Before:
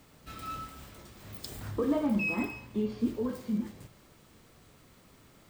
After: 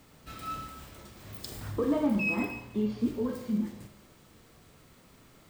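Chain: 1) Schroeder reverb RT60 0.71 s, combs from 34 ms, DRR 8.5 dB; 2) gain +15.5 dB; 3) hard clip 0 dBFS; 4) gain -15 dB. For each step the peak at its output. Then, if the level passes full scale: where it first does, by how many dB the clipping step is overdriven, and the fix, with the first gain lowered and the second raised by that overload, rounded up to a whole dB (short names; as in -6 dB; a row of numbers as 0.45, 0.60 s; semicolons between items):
-17.5, -2.0, -2.0, -17.0 dBFS; no overload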